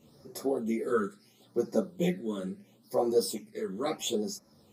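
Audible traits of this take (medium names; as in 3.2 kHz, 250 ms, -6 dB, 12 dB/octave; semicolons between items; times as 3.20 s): phasing stages 8, 0.74 Hz, lowest notch 720–3000 Hz; tremolo triangle 1.3 Hz, depth 45%; a shimmering, thickened sound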